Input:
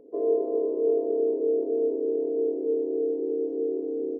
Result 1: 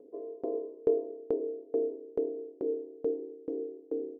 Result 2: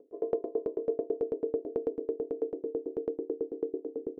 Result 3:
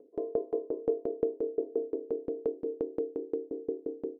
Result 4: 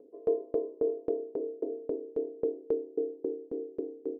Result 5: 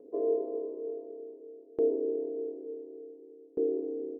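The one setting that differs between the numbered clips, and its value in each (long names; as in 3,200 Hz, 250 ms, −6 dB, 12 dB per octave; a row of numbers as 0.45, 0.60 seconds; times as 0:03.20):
tremolo with a ramp in dB, speed: 2.3, 9.1, 5.7, 3.7, 0.56 Hertz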